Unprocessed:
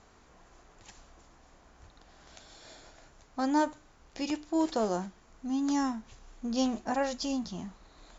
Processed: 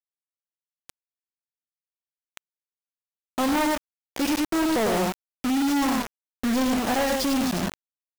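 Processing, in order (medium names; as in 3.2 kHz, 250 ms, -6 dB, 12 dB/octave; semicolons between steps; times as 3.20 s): tone controls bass -2 dB, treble -7 dB; delay 98 ms -5.5 dB; companded quantiser 2-bit; trim +3.5 dB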